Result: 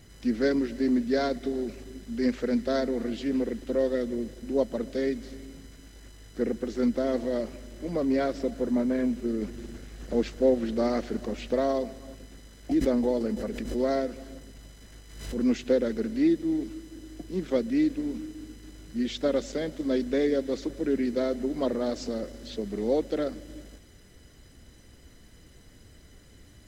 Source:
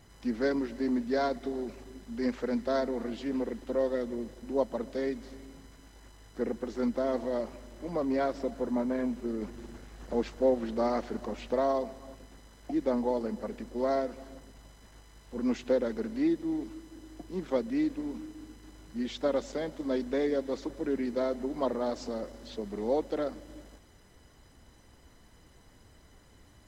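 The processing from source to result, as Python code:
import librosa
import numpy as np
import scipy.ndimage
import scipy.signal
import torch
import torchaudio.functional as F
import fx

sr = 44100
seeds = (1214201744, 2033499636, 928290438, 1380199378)

y = fx.peak_eq(x, sr, hz=930.0, db=-11.0, octaves=0.92)
y = fx.pre_swell(y, sr, db_per_s=66.0, at=(12.71, 15.45))
y = y * librosa.db_to_amplitude(5.5)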